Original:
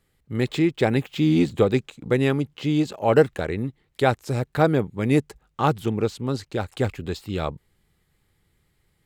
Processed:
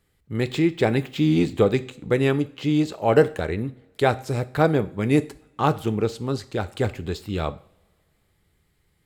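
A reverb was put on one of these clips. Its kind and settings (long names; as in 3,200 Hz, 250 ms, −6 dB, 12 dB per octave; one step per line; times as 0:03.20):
coupled-rooms reverb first 0.44 s, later 2.2 s, from −25 dB, DRR 11.5 dB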